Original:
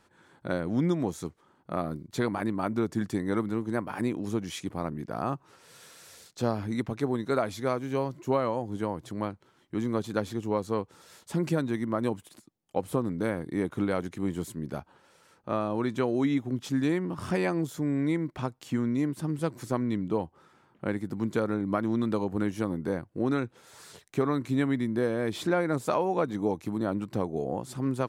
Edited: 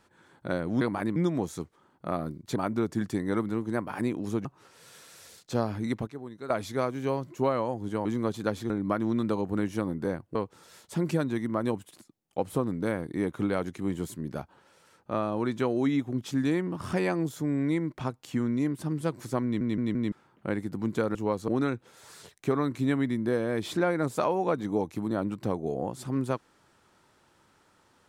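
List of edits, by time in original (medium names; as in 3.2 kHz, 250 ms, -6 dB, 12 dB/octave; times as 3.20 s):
2.21–2.56 s: move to 0.81 s
4.45–5.33 s: delete
6.95–7.38 s: gain -12 dB
8.93–9.75 s: delete
10.40–10.73 s: swap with 21.53–23.18 s
19.82 s: stutter in place 0.17 s, 4 plays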